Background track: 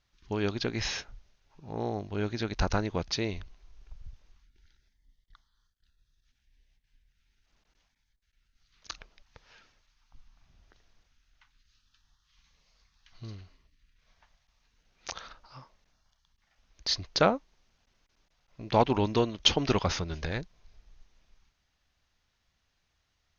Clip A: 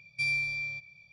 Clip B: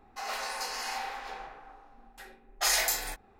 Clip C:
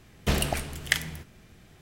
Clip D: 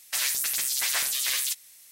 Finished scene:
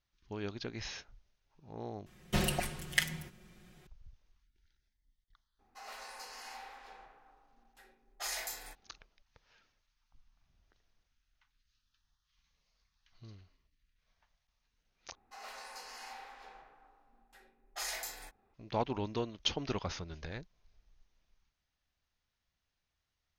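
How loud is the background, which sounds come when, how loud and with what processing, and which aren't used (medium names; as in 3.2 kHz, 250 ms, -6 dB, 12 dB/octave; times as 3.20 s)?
background track -10 dB
2.06 s: replace with C -8 dB + comb 5.5 ms, depth 98%
5.59 s: add B -12.5 dB
15.15 s: replace with B -12.5 dB + treble shelf 9.7 kHz -2.5 dB
not used: A, D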